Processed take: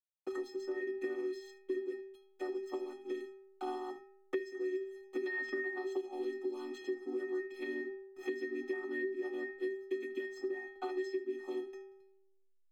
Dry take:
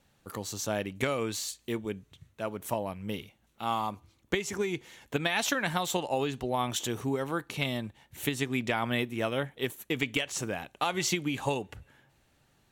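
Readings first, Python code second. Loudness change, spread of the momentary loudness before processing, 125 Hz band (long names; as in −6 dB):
−7.5 dB, 9 LU, below −40 dB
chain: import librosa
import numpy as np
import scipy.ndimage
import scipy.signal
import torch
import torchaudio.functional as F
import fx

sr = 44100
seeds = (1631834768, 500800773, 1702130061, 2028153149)

p1 = fx.chord_vocoder(x, sr, chord='minor triad', root=59)
p2 = fx.hum_notches(p1, sr, base_hz=60, count=4)
p3 = fx.dynamic_eq(p2, sr, hz=310.0, q=1.1, threshold_db=-43.0, ratio=4.0, max_db=5)
p4 = fx.level_steps(p3, sr, step_db=10)
p5 = p3 + F.gain(torch.from_numpy(p4), -2.0).numpy()
p6 = fx.backlash(p5, sr, play_db=-47.0)
p7 = fx.stiff_resonator(p6, sr, f0_hz=380.0, decay_s=0.68, stiffness=0.03)
p8 = p7 + fx.echo_single(p7, sr, ms=76, db=-19.0, dry=0)
p9 = fx.band_squash(p8, sr, depth_pct=100)
y = F.gain(torch.from_numpy(p9), 8.5).numpy()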